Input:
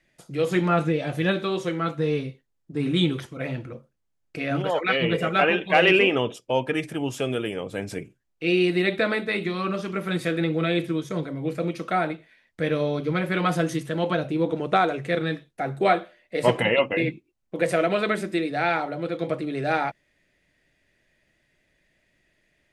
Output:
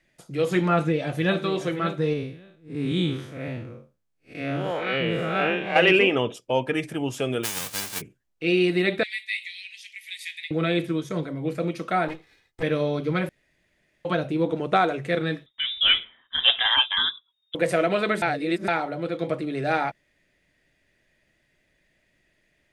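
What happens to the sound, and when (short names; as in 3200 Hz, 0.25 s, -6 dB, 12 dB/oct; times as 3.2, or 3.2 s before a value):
0.74–1.41 echo throw 0.57 s, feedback 20%, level -11 dB
2.13–5.76 time blur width 0.13 s
7.43–8 spectral whitening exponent 0.1
9.03–10.51 steep high-pass 1900 Hz 96 dB/oct
12.08–12.63 minimum comb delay 2.4 ms
13.29–14.05 room tone
15.46–17.55 inverted band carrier 3700 Hz
18.22–18.68 reverse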